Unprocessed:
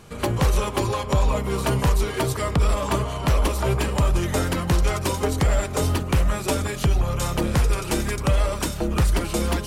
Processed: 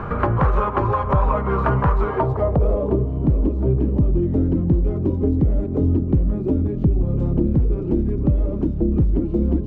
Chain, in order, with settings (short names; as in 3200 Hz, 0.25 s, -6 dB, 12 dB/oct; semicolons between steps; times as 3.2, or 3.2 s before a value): low-pass sweep 1300 Hz -> 300 Hz, 1.96–3.14; three-band squash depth 70%; gain +1 dB